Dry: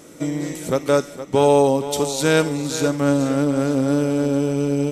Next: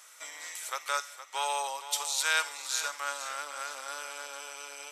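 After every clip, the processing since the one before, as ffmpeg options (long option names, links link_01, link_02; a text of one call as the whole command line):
ffmpeg -i in.wav -af "highpass=frequency=1000:width=0.5412,highpass=frequency=1000:width=1.3066,volume=-3.5dB" out.wav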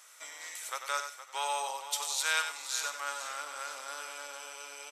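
ffmpeg -i in.wav -af "aecho=1:1:94:0.376,volume=-2.5dB" out.wav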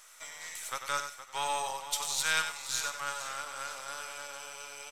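ffmpeg -i in.wav -af "aeval=exprs='if(lt(val(0),0),0.708*val(0),val(0))':channel_layout=same,volume=2dB" out.wav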